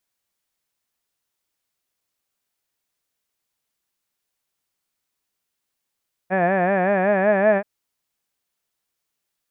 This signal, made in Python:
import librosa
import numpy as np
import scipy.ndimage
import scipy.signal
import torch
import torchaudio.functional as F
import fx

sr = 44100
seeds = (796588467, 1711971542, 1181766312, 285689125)

y = fx.vowel(sr, seeds[0], length_s=1.33, word='had', hz=180.0, glide_st=2.5, vibrato_hz=5.3, vibrato_st=1.05)